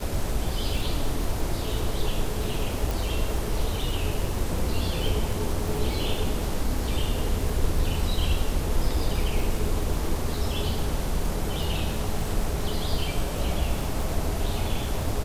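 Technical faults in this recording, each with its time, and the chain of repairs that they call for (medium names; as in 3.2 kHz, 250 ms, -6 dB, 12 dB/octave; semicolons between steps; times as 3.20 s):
crackle 50 per s -30 dBFS
2.91 s: pop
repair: de-click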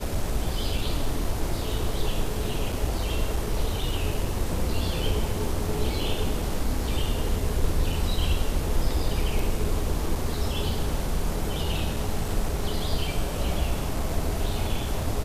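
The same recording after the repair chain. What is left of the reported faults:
nothing left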